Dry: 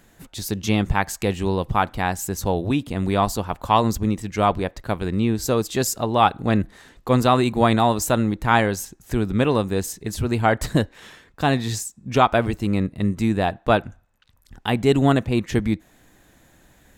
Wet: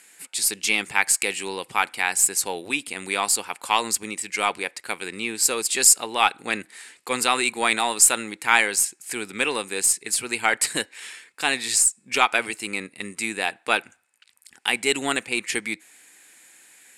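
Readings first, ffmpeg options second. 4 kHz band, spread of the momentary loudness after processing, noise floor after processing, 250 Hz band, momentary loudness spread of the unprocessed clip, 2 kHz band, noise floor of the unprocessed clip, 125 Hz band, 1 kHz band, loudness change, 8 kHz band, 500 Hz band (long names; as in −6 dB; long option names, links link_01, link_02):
+5.0 dB, 13 LU, −61 dBFS, −13.0 dB, 9 LU, +5.5 dB, −57 dBFS, −25.0 dB, −4.0 dB, −0.5 dB, +12.0 dB, −8.5 dB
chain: -af "highpass=390,equalizer=frequency=630:width_type=q:width=4:gain=-9,equalizer=frequency=1100:width_type=q:width=4:gain=-4,equalizer=frequency=2300:width_type=q:width=4:gain=7,equalizer=frequency=3600:width_type=q:width=4:gain=-6,equalizer=frequency=6100:width_type=q:width=4:gain=-9,equalizer=frequency=9200:width_type=q:width=4:gain=4,lowpass=frequency=9600:width=0.5412,lowpass=frequency=9600:width=1.3066,crystalizer=i=8.5:c=0,aeval=exprs='1.58*(cos(1*acos(clip(val(0)/1.58,-1,1)))-cos(1*PI/2))+0.0158*(cos(8*acos(clip(val(0)/1.58,-1,1)))-cos(8*PI/2))':channel_layout=same,volume=-5dB"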